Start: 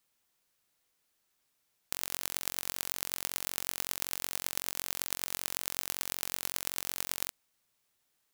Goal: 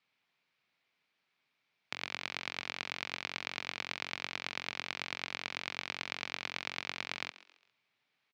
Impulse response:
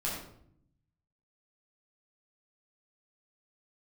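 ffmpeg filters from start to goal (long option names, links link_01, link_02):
-filter_complex "[0:a]highpass=frequency=110:width=0.5412,highpass=frequency=110:width=1.3066,equalizer=frequency=330:width_type=q:width=4:gain=-4,equalizer=frequency=510:width_type=q:width=4:gain=-4,equalizer=frequency=2300:width_type=q:width=4:gain=8,lowpass=frequency=4300:width=0.5412,lowpass=frequency=4300:width=1.3066,asplit=4[link_01][link_02][link_03][link_04];[link_02]adelay=135,afreqshift=84,volume=-17.5dB[link_05];[link_03]adelay=270,afreqshift=168,volume=-25.5dB[link_06];[link_04]adelay=405,afreqshift=252,volume=-33.4dB[link_07];[link_01][link_05][link_06][link_07]amix=inputs=4:normalize=0,volume=1dB"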